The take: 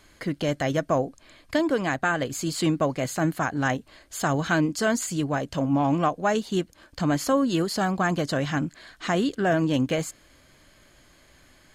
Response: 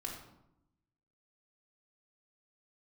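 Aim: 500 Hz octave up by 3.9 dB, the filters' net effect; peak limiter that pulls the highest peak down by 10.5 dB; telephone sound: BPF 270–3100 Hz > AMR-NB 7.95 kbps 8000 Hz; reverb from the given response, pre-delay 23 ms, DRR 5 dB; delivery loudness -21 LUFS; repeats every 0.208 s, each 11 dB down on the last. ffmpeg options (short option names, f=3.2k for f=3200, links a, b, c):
-filter_complex "[0:a]equalizer=f=500:t=o:g=5.5,alimiter=limit=-18.5dB:level=0:latency=1,aecho=1:1:208|416|624:0.282|0.0789|0.0221,asplit=2[a][b];[1:a]atrim=start_sample=2205,adelay=23[c];[b][c]afir=irnorm=-1:irlink=0,volume=-4.5dB[d];[a][d]amix=inputs=2:normalize=0,highpass=270,lowpass=3.1k,volume=8dB" -ar 8000 -c:a libopencore_amrnb -b:a 7950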